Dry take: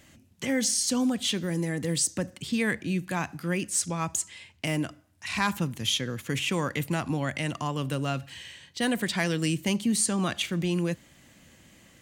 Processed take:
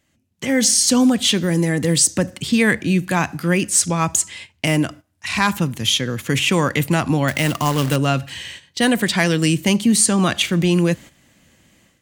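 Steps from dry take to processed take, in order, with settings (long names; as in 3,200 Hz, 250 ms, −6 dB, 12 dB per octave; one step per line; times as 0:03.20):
noise gate −46 dBFS, range −11 dB
automatic gain control gain up to 12 dB
0:07.28–0:07.96: log-companded quantiser 4 bits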